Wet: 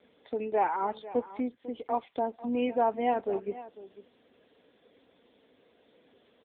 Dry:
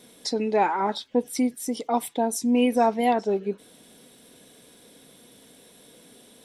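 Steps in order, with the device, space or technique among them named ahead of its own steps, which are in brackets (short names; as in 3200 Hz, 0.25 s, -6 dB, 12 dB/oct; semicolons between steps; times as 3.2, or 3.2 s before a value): satellite phone (BPF 300–3100 Hz; echo 0.497 s -16 dB; gain -4 dB; AMR-NB 6.7 kbps 8000 Hz)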